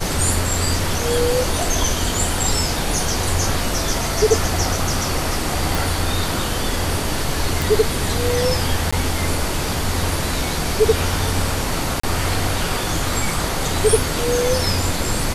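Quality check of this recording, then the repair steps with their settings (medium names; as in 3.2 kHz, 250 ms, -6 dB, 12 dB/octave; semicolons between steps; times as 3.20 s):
5.75 s: pop
7.62 s: pop
8.91–8.93 s: dropout 15 ms
12.00–12.03 s: dropout 34 ms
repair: de-click; interpolate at 8.91 s, 15 ms; interpolate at 12.00 s, 34 ms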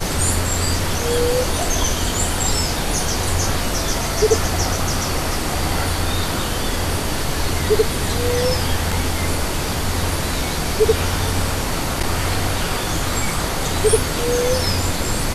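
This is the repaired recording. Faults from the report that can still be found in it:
nothing left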